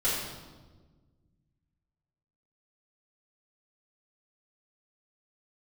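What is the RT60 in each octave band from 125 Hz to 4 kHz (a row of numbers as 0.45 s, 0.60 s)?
2.6 s, 2.2 s, 1.5 s, 1.2 s, 0.95 s, 1.0 s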